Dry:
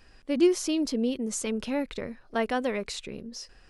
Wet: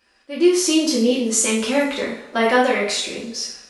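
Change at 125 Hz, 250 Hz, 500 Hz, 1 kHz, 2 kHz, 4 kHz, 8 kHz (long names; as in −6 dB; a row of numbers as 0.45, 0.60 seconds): can't be measured, +8.0 dB, +9.5 dB, +12.5 dB, +14.0 dB, +13.5 dB, +15.0 dB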